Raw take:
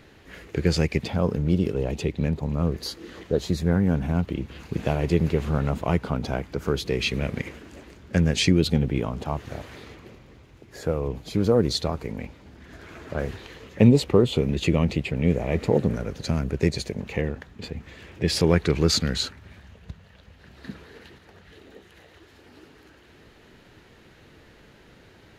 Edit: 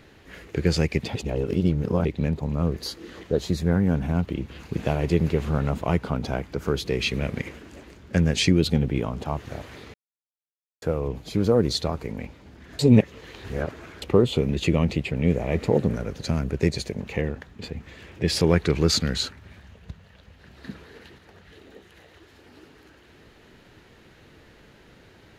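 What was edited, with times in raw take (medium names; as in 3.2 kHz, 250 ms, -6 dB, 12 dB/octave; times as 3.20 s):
1.15–2.05 s: reverse
9.94–10.82 s: mute
12.79–14.02 s: reverse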